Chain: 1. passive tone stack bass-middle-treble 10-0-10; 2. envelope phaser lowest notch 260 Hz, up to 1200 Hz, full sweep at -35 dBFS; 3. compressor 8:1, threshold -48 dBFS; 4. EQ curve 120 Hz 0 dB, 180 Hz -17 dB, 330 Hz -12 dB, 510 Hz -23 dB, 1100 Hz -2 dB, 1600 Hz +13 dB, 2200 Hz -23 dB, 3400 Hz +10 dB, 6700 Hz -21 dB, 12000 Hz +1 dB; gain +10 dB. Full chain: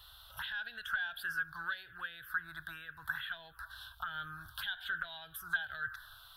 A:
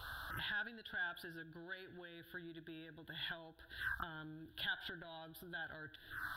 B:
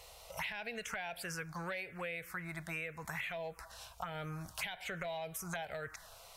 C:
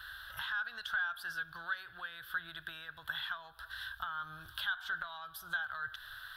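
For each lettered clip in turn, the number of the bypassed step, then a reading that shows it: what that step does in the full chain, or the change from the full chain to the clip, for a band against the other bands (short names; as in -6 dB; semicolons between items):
1, 250 Hz band +11.5 dB; 4, 2 kHz band -16.0 dB; 2, 125 Hz band -2.5 dB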